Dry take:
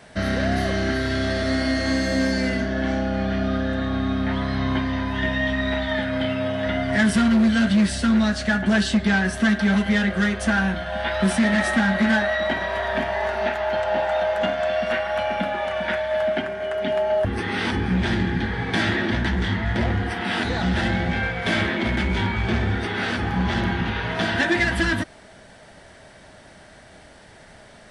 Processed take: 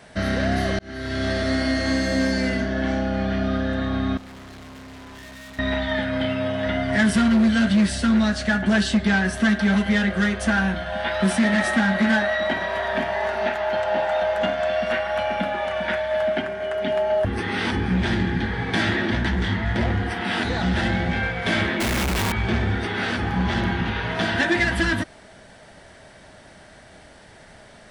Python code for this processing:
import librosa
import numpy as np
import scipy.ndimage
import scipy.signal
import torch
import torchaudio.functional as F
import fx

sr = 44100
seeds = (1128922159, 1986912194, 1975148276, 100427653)

y = fx.tube_stage(x, sr, drive_db=40.0, bias=0.75, at=(4.17, 5.59))
y = fx.highpass(y, sr, hz=82.0, slope=12, at=(10.93, 14.22))
y = fx.schmitt(y, sr, flips_db=-38.5, at=(21.8, 22.32))
y = fx.edit(y, sr, fx.fade_in_span(start_s=0.79, length_s=0.49), tone=tone)